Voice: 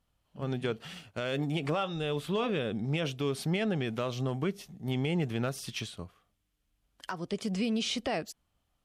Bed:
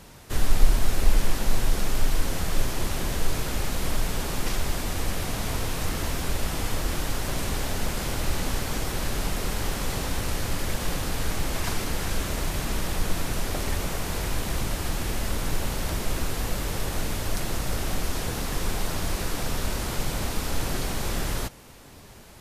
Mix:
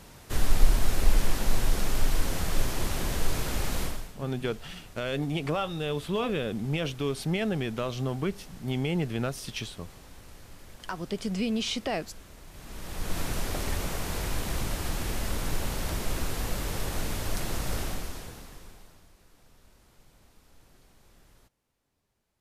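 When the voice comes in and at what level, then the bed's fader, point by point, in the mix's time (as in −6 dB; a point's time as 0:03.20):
3.80 s, +1.5 dB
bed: 0:03.82 −2 dB
0:04.16 −21 dB
0:12.46 −21 dB
0:13.19 −3 dB
0:17.80 −3 dB
0:19.13 −31 dB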